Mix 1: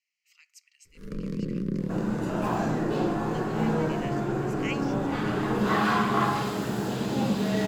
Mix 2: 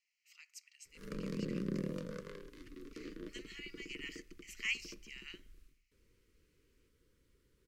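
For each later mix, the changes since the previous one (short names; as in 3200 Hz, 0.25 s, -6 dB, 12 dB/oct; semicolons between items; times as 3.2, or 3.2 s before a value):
second sound: muted; master: add low shelf 380 Hz -11 dB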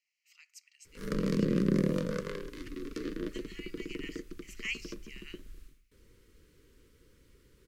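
background +10.5 dB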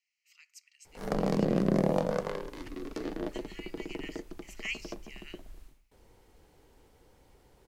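background: remove Butterworth band-stop 760 Hz, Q 1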